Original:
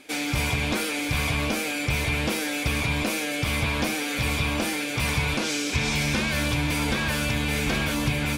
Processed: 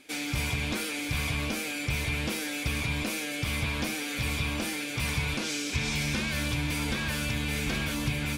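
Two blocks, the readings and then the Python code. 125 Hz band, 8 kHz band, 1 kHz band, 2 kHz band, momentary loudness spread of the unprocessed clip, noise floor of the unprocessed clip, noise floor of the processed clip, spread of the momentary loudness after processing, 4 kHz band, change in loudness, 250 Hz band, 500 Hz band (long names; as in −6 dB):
−4.5 dB, −4.0 dB, −7.5 dB, −5.0 dB, 2 LU, −29 dBFS, −34 dBFS, 2 LU, −4.5 dB, −5.0 dB, −5.5 dB, −7.5 dB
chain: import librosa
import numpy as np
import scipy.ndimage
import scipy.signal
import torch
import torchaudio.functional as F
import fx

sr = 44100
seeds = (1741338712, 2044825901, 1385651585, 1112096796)

y = fx.peak_eq(x, sr, hz=710.0, db=-4.5, octaves=2.0)
y = y * librosa.db_to_amplitude(-4.0)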